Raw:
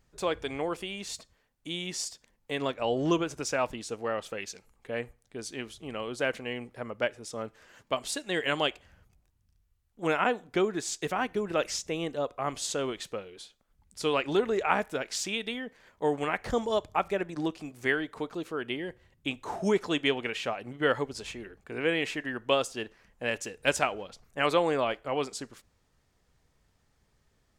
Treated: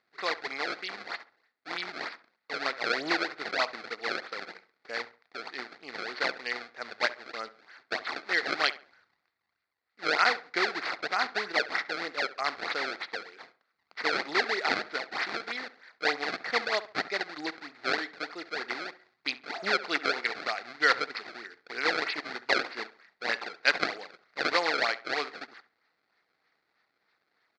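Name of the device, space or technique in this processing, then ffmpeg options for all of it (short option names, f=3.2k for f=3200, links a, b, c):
circuit-bent sampling toy: -filter_complex "[0:a]acrusher=samples=27:mix=1:aa=0.000001:lfo=1:lforange=43.2:lforate=3.2,highpass=570,equalizer=f=570:t=q:w=4:g=-7,equalizer=f=970:t=q:w=4:g=-5,equalizer=f=1.4k:t=q:w=4:g=4,equalizer=f=2k:t=q:w=4:g=8,equalizer=f=3k:t=q:w=4:g=-7,equalizer=f=4.4k:t=q:w=4:g=9,lowpass=f=4.7k:w=0.5412,lowpass=f=4.7k:w=1.3066,equalizer=f=410:t=o:w=0.32:g=-2.5,asplit=2[a][b];[b]adelay=68,lowpass=f=2.2k:p=1,volume=-15dB,asplit=2[c][d];[d]adelay=68,lowpass=f=2.2k:p=1,volume=0.33,asplit=2[e][f];[f]adelay=68,lowpass=f=2.2k:p=1,volume=0.33[g];[a][c][e][g]amix=inputs=4:normalize=0,volume=3dB"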